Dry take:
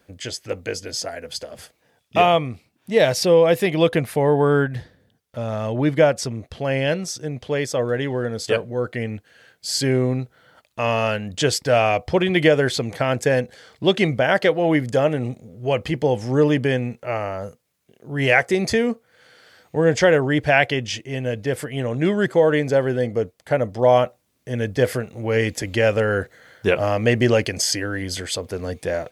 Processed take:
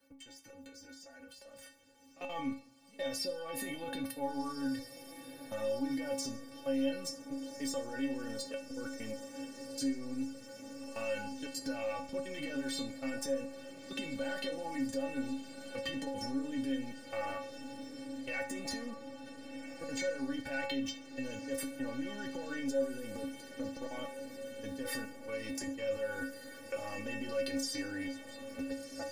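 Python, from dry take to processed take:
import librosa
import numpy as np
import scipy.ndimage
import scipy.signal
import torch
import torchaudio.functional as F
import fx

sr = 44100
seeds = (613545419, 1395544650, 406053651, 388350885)

p1 = scipy.signal.sosfilt(scipy.signal.butter(2, 43.0, 'highpass', fs=sr, output='sos'), x)
p2 = fx.leveller(p1, sr, passes=1)
p3 = fx.high_shelf(p2, sr, hz=11000.0, db=4.0)
p4 = fx.transient(p3, sr, attack_db=-11, sustain_db=8)
p5 = fx.dynamic_eq(p4, sr, hz=390.0, q=1.8, threshold_db=-30.0, ratio=4.0, max_db=3)
p6 = fx.auto_swell(p5, sr, attack_ms=158.0)
p7 = fx.level_steps(p6, sr, step_db=23)
p8 = fx.stiff_resonator(p7, sr, f0_hz=270.0, decay_s=0.37, stiffness=0.008)
p9 = p8 + fx.echo_diffused(p8, sr, ms=1469, feedback_pct=69, wet_db=-15, dry=0)
p10 = fx.rev_double_slope(p9, sr, seeds[0], early_s=0.53, late_s=2.2, knee_db=-18, drr_db=10.0)
p11 = fx.band_squash(p10, sr, depth_pct=40)
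y = p11 * 10.0 ** (1.0 / 20.0)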